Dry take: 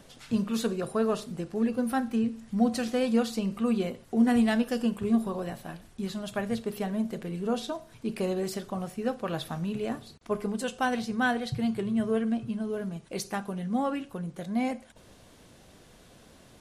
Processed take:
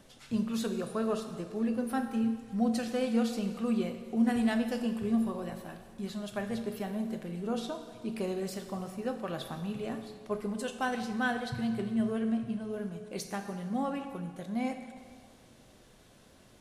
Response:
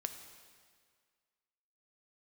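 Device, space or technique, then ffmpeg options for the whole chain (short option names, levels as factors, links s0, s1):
stairwell: -filter_complex "[1:a]atrim=start_sample=2205[s0];[0:a][s0]afir=irnorm=-1:irlink=0,volume=0.708"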